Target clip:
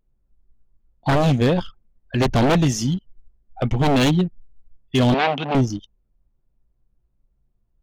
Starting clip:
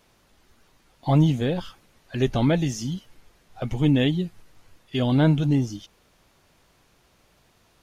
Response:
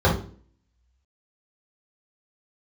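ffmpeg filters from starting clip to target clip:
-filter_complex "[0:a]aeval=exprs='0.119*(abs(mod(val(0)/0.119+3,4)-2)-1)':c=same,asettb=1/sr,asplit=3[s0][s1][s2];[s0]atrim=end=5.144[s3];[s1]atrim=start=5.14:end=5.55,asetpts=PTS-STARTPTS,afade=t=in:d=0.004:c=qsin,afade=t=out:st=0.406:d=0.004:c=qsin,highpass=f=230:w=0.5412,highpass=f=230:w=1.3066,equalizer=f=300:t=q:w=4:g=-10,equalizer=f=480:t=q:w=4:g=-5,equalizer=f=810:t=q:w=4:g=4,equalizer=f=2600:t=q:w=4:g=7,lowpass=f=4400:w=0.5412,lowpass=f=4400:w=1.3066[s4];[s2]atrim=start=5.546[s5];[s3][s4]acrossfade=d=0.004:c1=hsin:c2=qsin[s6];[s6][s5]acrossfade=d=0.004:c1=qsin:c2=hsin,anlmdn=0.631,volume=2.37"

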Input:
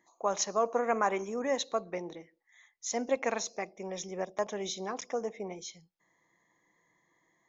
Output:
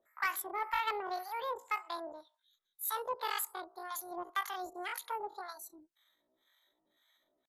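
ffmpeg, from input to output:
-filter_complex "[0:a]acrossover=split=440[s0][s1];[s0]aeval=exprs='val(0)*(1-1/2+1/2*cos(2*PI*1.9*n/s))':c=same[s2];[s1]aeval=exprs='val(0)*(1-1/2-1/2*cos(2*PI*1.9*n/s))':c=same[s3];[s2][s3]amix=inputs=2:normalize=0,asetrate=83250,aresample=44100,atempo=0.529732,asoftclip=type=tanh:threshold=0.0562,volume=1.19"

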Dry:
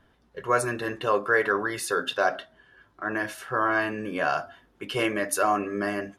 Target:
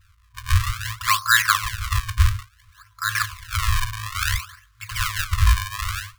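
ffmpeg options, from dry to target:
-af "acrusher=samples=37:mix=1:aa=0.000001:lfo=1:lforange=59.2:lforate=0.58,equalizer=f=180:t=o:w=1.8:g=9.5,afftfilt=real='re*(1-between(b*sr/4096,110,1000))':imag='im*(1-between(b*sr/4096,110,1000))':win_size=4096:overlap=0.75,volume=2.37"

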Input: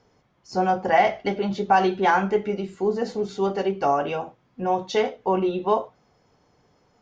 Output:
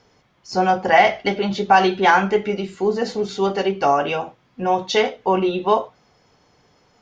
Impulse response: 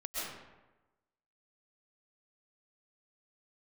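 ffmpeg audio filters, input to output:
-af "equalizer=f=3500:t=o:w=2.6:g=6.5,volume=1.41"

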